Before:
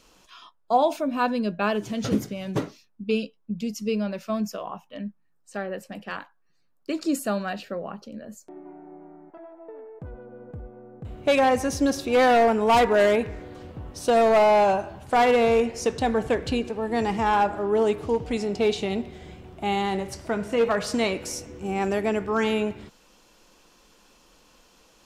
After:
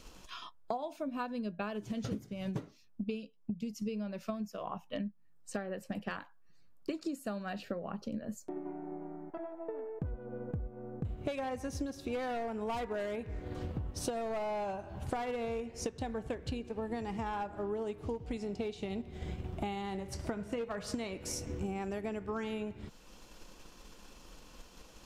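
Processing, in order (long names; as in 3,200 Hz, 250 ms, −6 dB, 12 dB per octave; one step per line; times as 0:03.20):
low-shelf EQ 160 Hz +9.5 dB
transient designer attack +4 dB, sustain −3 dB
downward compressor 16 to 1, threshold −34 dBFS, peak gain reduction 23 dB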